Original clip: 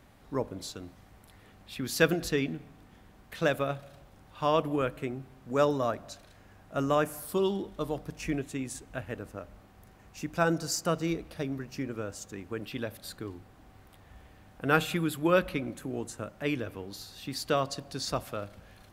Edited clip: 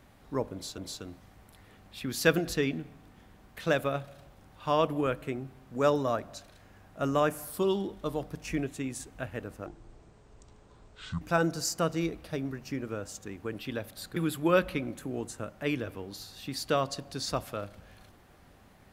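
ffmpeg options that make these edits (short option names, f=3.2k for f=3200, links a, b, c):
-filter_complex "[0:a]asplit=5[a][b][c][d][e];[a]atrim=end=0.782[f];[b]atrim=start=0.528:end=9.414[g];[c]atrim=start=9.41:end=10.28,asetpts=PTS-STARTPTS,asetrate=24696,aresample=44100,atrim=end_sample=68512,asetpts=PTS-STARTPTS[h];[d]atrim=start=10.276:end=13.232[i];[e]atrim=start=14.958[j];[f][g]acrossfade=d=0.004:c1=hsin:c2=hsin[k];[k][h]acrossfade=d=0.004:c1=hsin:c2=hsin[l];[l][i]acrossfade=d=0.004:c1=hsin:c2=hsin[m];[m][j]acrossfade=d=0.004:c1=hsin:c2=hsin"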